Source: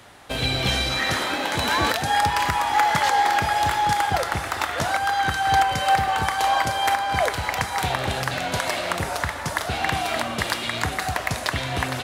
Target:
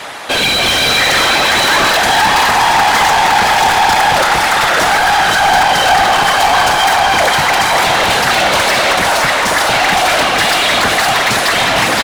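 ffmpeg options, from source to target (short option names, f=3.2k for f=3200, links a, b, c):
-filter_complex "[0:a]afftfilt=real='hypot(re,im)*cos(2*PI*random(0))':imag='hypot(re,im)*sin(2*PI*random(1))':win_size=512:overlap=0.75,acontrast=54,asplit=2[a][b];[b]highpass=f=720:p=1,volume=28dB,asoftclip=type=tanh:threshold=-6.5dB[c];[a][c]amix=inputs=2:normalize=0,lowpass=f=5.9k:p=1,volume=-6dB,asplit=2[d][e];[e]aecho=0:1:515:0.562[f];[d][f]amix=inputs=2:normalize=0,volume=1.5dB"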